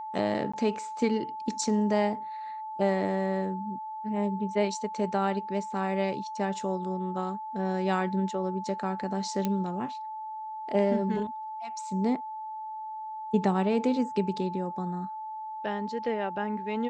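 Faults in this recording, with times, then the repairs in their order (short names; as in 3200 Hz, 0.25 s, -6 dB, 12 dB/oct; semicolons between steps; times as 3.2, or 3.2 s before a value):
tone 870 Hz -35 dBFS
0.52–0.54 gap 15 ms
9.45 pop -15 dBFS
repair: de-click; notch 870 Hz, Q 30; interpolate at 0.52, 15 ms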